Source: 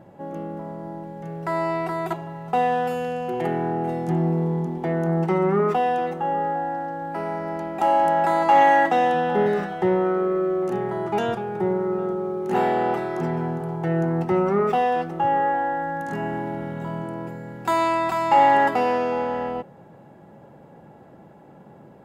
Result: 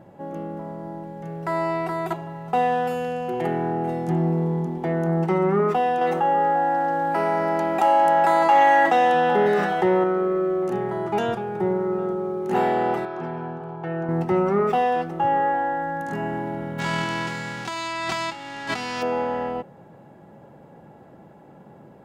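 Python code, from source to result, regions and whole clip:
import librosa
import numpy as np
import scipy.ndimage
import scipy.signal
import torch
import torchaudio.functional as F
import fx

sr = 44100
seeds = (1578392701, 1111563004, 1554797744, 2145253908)

y = fx.chain(x, sr, fx.low_shelf(hz=260.0, db=-9.0),
    fx.env_flatten(amount_pct=50), at=(6.01, 10.04))
y = fx.chain(y, sr, fx.lowpass(hz=3100.0, slope=12),
    fx.low_shelf(hz=500.0, db=-8.5),
    fx.notch(hz=2000.0, q=9.1), at=(13.05, 14.09))
y = fx.envelope_flatten(y, sr, power=0.3, at=(16.78, 19.01), fade=0.02)
y = fx.air_absorb(y, sr, metres=120.0, at=(16.78, 19.01), fade=0.02)
y = fx.over_compress(y, sr, threshold_db=-29.0, ratio=-1.0, at=(16.78, 19.01), fade=0.02)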